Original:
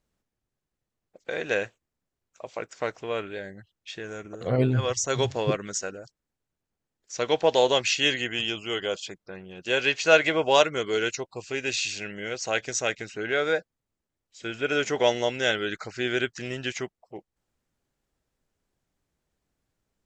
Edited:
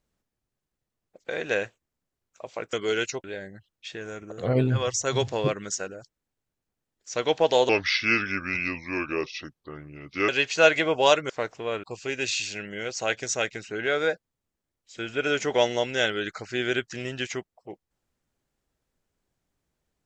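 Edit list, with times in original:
2.73–3.27 swap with 10.78–11.29
7.72–9.77 speed 79%

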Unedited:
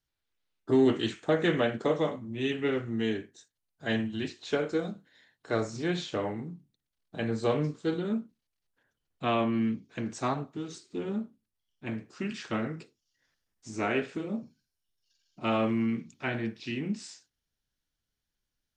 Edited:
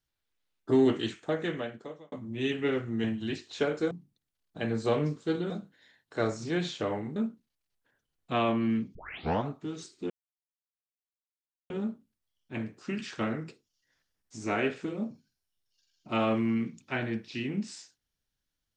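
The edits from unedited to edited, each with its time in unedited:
0.77–2.12 fade out
3.04–3.96 cut
6.49–8.08 move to 4.83
9.87 tape start 0.53 s
11.02 insert silence 1.60 s

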